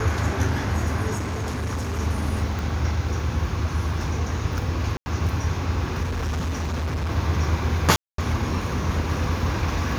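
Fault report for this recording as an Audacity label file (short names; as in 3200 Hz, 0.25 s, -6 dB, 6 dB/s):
1.150000	2.000000	clipped -23.5 dBFS
2.590000	2.590000	pop
4.970000	5.060000	gap 90 ms
6.020000	7.120000	clipped -23 dBFS
7.960000	8.180000	gap 0.223 s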